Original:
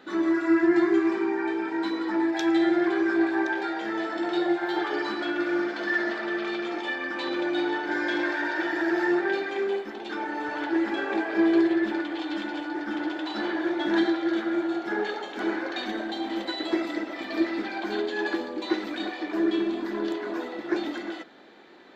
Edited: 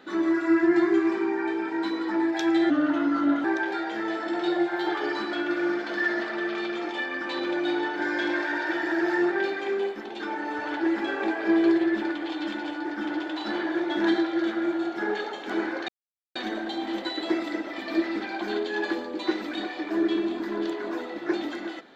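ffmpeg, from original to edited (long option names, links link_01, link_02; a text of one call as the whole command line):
ffmpeg -i in.wav -filter_complex "[0:a]asplit=4[link_01][link_02][link_03][link_04];[link_01]atrim=end=2.704[link_05];[link_02]atrim=start=2.7:end=3.34,asetpts=PTS-STARTPTS,asetrate=37926,aresample=44100[link_06];[link_03]atrim=start=3.336:end=15.78,asetpts=PTS-STARTPTS,afade=type=out:start_time=12.44:duration=0.004:curve=hsin,apad=pad_dur=0.47[link_07];[link_04]atrim=start=15.78,asetpts=PTS-STARTPTS,afade=type=in:duration=0.004:curve=hsin[link_08];[link_05][link_06]acrossfade=duration=0.004:curve1=hsin:curve2=hsin[link_09];[link_07][link_08]concat=n=2:v=0:a=1[link_10];[link_09][link_10]acrossfade=duration=0.004:curve1=hsin:curve2=hsin" out.wav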